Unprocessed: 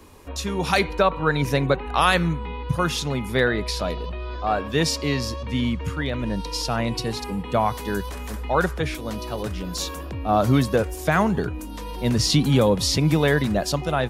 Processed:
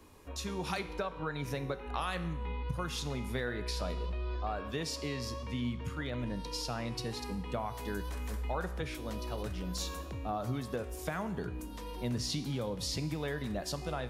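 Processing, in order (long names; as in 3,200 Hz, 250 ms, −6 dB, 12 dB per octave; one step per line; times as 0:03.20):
downward compressor, threshold −23 dBFS, peak gain reduction 9.5 dB
tuned comb filter 61 Hz, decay 0.93 s, harmonics all, mix 60%
level −3 dB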